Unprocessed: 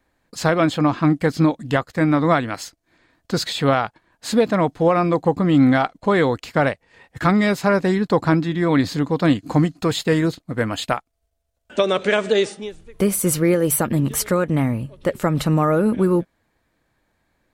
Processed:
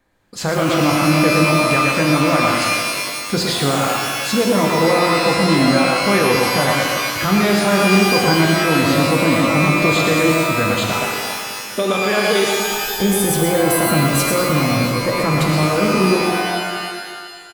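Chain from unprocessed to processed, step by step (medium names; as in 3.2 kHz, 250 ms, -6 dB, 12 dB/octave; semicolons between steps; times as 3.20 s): delay 117 ms -6 dB; loudness maximiser +11 dB; pitch-shifted reverb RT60 1.8 s, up +12 st, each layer -2 dB, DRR 1.5 dB; trim -9.5 dB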